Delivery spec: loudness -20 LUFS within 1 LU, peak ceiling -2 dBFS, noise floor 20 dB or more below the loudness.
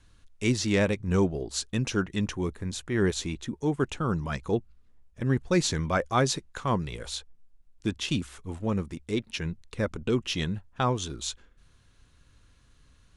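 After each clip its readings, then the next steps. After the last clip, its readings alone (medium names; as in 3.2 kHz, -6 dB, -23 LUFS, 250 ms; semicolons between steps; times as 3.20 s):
loudness -29.5 LUFS; peak level -10.5 dBFS; loudness target -20.0 LUFS
-> trim +9.5 dB; peak limiter -2 dBFS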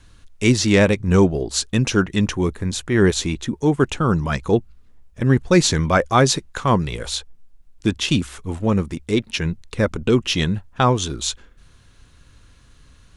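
loudness -20.0 LUFS; peak level -2.0 dBFS; noise floor -51 dBFS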